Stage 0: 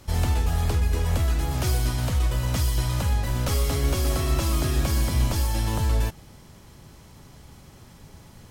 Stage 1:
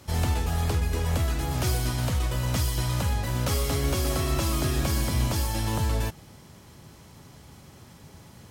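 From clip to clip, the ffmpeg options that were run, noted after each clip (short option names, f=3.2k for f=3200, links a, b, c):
-af "highpass=70"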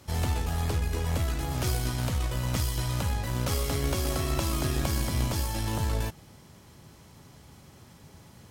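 -af "aeval=exprs='0.237*(cos(1*acos(clip(val(0)/0.237,-1,1)))-cos(1*PI/2))+0.0335*(cos(2*acos(clip(val(0)/0.237,-1,1)))-cos(2*PI/2))+0.0335*(cos(3*acos(clip(val(0)/0.237,-1,1)))-cos(3*PI/2))+0.00668*(cos(5*acos(clip(val(0)/0.237,-1,1)))-cos(5*PI/2))':c=same"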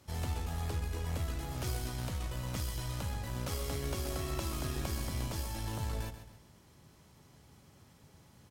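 -af "aecho=1:1:135|270|405|540:0.282|0.104|0.0386|0.0143,volume=-8.5dB"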